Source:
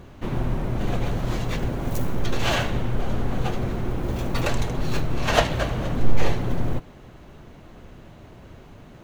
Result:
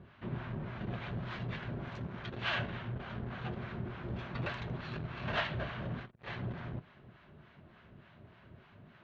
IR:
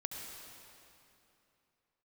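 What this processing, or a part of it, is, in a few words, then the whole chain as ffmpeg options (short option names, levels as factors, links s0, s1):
guitar amplifier with harmonic tremolo: -filter_complex "[0:a]acrossover=split=750[s0][s1];[s0]aeval=exprs='val(0)*(1-0.7/2+0.7/2*cos(2*PI*3.4*n/s))':c=same[s2];[s1]aeval=exprs='val(0)*(1-0.7/2-0.7/2*cos(2*PI*3.4*n/s))':c=same[s3];[s2][s3]amix=inputs=2:normalize=0,asoftclip=type=tanh:threshold=0.119,highpass=97,equalizer=f=290:t=q:w=4:g=-9,equalizer=f=490:t=q:w=4:g=-8,equalizer=f=800:t=q:w=4:g=-5,equalizer=f=1600:t=q:w=4:g=4,lowpass=f=3700:w=0.5412,lowpass=f=3700:w=1.3066,volume=0.531"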